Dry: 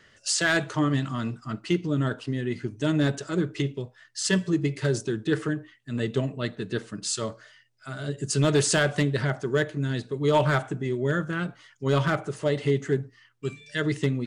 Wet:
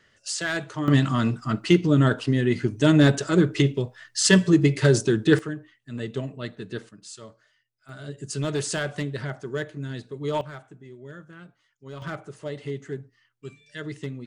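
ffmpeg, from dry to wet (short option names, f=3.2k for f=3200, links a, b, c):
-af "asetnsamples=n=441:p=0,asendcmd='0.88 volume volume 7dB;5.39 volume volume -4dB;6.89 volume volume -13dB;7.89 volume volume -5.5dB;10.41 volume volume -16.5dB;12.02 volume volume -8.5dB',volume=-4.5dB"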